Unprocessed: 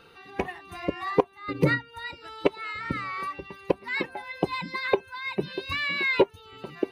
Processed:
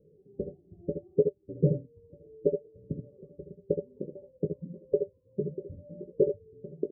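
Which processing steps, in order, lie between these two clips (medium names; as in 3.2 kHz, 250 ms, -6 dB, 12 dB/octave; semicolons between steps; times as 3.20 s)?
rippled Chebyshev low-pass 600 Hz, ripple 9 dB; on a send: early reflections 19 ms -9 dB, 68 ms -10.5 dB, 80 ms -8.5 dB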